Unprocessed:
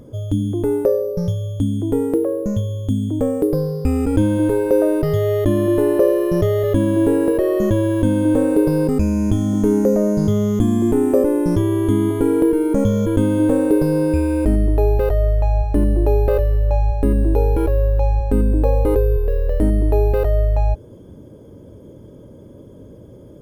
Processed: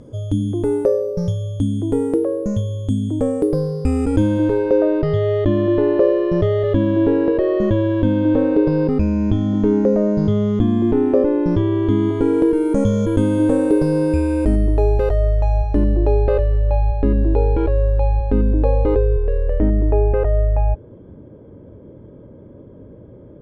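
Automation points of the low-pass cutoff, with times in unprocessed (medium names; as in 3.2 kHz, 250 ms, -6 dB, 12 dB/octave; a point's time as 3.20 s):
low-pass 24 dB/octave
4.03 s 10 kHz
4.83 s 4.3 kHz
11.74 s 4.3 kHz
12.69 s 9.4 kHz
15.18 s 9.4 kHz
16.39 s 4.2 kHz
18.91 s 4.2 kHz
19.78 s 2.4 kHz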